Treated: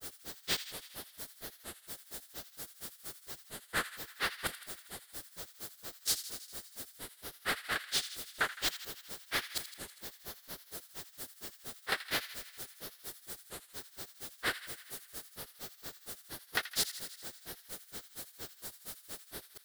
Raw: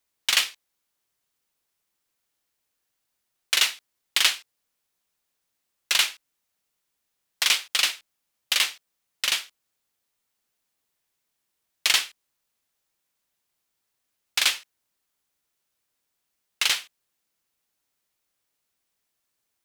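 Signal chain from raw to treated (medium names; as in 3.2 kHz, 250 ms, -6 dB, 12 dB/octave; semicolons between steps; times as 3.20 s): jump at every zero crossing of -20.5 dBFS; peaking EQ 11 kHz -9.5 dB 0.56 oct; level held to a coarse grid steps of 14 dB; granulator 120 ms, grains 4.3 per s, pitch spread up and down by 12 st; fifteen-band graphic EQ 400 Hz +3 dB, 1 kHz -7 dB, 2.5 kHz -11 dB, 6.3 kHz -6 dB; on a send: feedback echo behind a high-pass 81 ms, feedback 70%, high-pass 1.6 kHz, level -12 dB; on the sum: trim +4.5 dB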